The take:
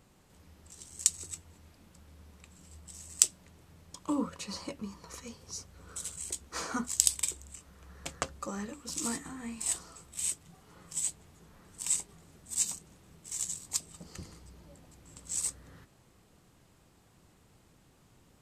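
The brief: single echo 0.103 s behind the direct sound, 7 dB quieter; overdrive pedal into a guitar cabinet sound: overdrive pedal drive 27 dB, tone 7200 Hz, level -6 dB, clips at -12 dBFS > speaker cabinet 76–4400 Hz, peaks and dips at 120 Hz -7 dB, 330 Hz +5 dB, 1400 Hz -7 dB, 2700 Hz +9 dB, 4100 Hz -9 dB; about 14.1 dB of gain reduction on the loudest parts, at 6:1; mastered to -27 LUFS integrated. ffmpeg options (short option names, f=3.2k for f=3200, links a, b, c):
-filter_complex "[0:a]acompressor=threshold=-36dB:ratio=6,aecho=1:1:103:0.447,asplit=2[a][b];[b]highpass=f=720:p=1,volume=27dB,asoftclip=type=tanh:threshold=-12dB[c];[a][c]amix=inputs=2:normalize=0,lowpass=f=7.2k:p=1,volume=-6dB,highpass=76,equalizer=f=120:t=q:w=4:g=-7,equalizer=f=330:t=q:w=4:g=5,equalizer=f=1.4k:t=q:w=4:g=-7,equalizer=f=2.7k:t=q:w=4:g=9,equalizer=f=4.1k:t=q:w=4:g=-9,lowpass=f=4.4k:w=0.5412,lowpass=f=4.4k:w=1.3066,volume=6dB"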